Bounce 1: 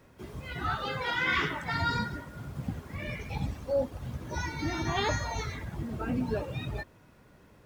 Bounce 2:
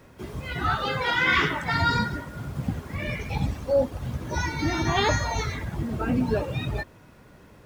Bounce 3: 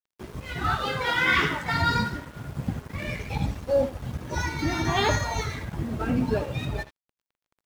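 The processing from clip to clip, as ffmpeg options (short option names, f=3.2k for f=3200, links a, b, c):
-af "equalizer=f=16k:t=o:w=0.24:g=-2,volume=6.5dB"
-af "aecho=1:1:78:0.237,aeval=exprs='sgn(val(0))*max(abs(val(0))-0.00794,0)':c=same"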